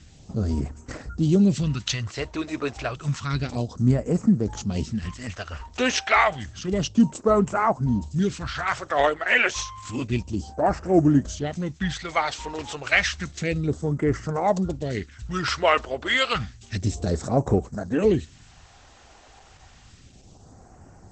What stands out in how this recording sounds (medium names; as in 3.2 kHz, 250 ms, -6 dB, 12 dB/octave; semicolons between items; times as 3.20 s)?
phasing stages 2, 0.3 Hz, lowest notch 150–3300 Hz; Opus